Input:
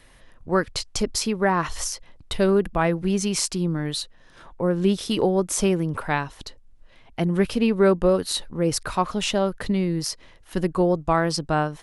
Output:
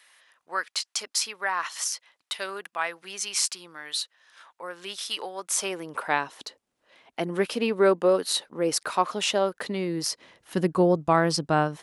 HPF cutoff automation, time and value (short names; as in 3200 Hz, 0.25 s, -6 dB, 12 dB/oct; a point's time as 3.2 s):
5.34 s 1200 Hz
6.17 s 350 Hz
9.72 s 350 Hz
10.56 s 130 Hz